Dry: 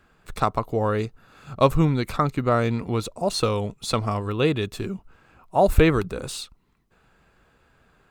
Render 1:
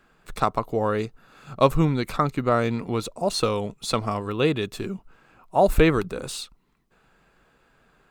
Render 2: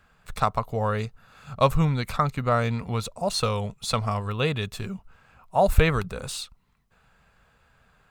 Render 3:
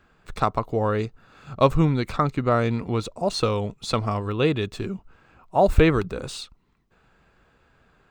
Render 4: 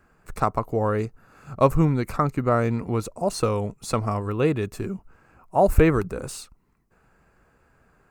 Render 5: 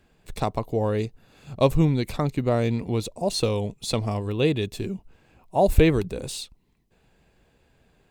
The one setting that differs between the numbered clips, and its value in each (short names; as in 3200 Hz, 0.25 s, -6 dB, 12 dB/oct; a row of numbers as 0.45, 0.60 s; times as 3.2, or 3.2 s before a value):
bell, frequency: 78, 330, 12000, 3500, 1300 Hz